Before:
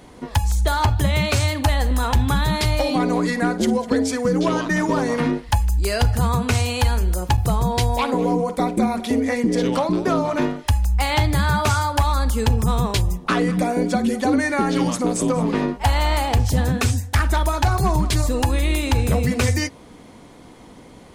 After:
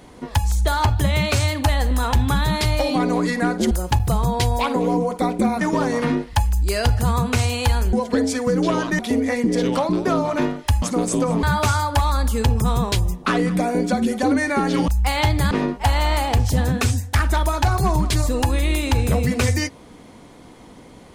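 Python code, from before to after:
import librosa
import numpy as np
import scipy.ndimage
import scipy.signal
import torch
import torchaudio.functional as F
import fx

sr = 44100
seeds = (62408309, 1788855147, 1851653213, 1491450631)

y = fx.edit(x, sr, fx.swap(start_s=3.71, length_s=1.06, other_s=7.09, other_length_s=1.9),
    fx.swap(start_s=10.82, length_s=0.63, other_s=14.9, other_length_s=0.61), tone=tone)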